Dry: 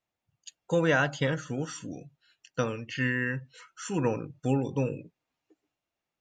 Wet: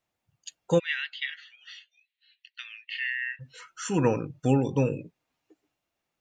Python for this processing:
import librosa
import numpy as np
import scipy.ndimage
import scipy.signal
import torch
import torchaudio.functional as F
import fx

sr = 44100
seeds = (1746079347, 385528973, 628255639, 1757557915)

y = fx.ellip_bandpass(x, sr, low_hz=1900.0, high_hz=4200.0, order=3, stop_db=80, at=(0.78, 3.39), fade=0.02)
y = y * 10.0 ** (4.0 / 20.0)